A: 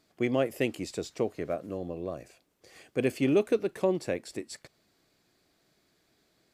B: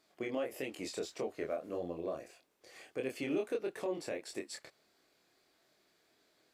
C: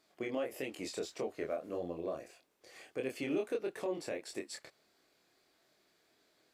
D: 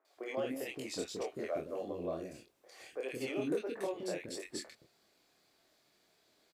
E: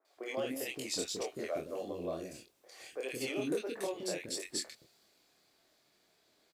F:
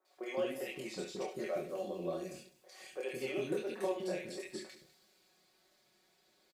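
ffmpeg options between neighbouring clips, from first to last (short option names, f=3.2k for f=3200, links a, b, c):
-af "bass=f=250:g=-12,treble=f=4k:g=-2,alimiter=level_in=2dB:limit=-24dB:level=0:latency=1:release=179,volume=-2dB,flanger=delay=22.5:depth=4.5:speed=1.6,volume=2.5dB"
-af anull
-filter_complex "[0:a]acrossover=split=380|1600[a][b][c];[c]adelay=50[d];[a]adelay=170[e];[e][b][d]amix=inputs=3:normalize=0,volume=2dB"
-af "adynamicequalizer=threshold=0.00112:dfrequency=2800:dqfactor=0.7:tfrequency=2800:tqfactor=0.7:attack=5:release=100:ratio=0.375:range=4:mode=boostabove:tftype=highshelf"
-filter_complex "[0:a]acrossover=split=2700[a][b];[b]acompressor=threshold=-51dB:ratio=4:attack=1:release=60[c];[a][c]amix=inputs=2:normalize=0,aecho=1:1:5.4:0.73,aecho=1:1:69|201:0.282|0.106,volume=-2.5dB"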